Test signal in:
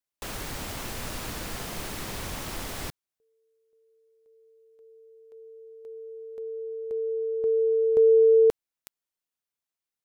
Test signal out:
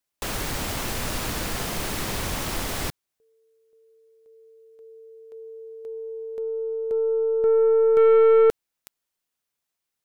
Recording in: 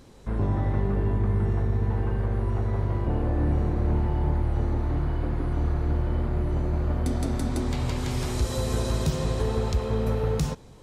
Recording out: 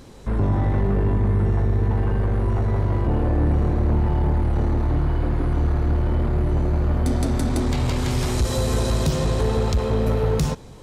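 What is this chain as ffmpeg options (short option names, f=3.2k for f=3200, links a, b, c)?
-af "aeval=exprs='(tanh(10*val(0)+0.15)-tanh(0.15))/10':c=same,volume=7dB"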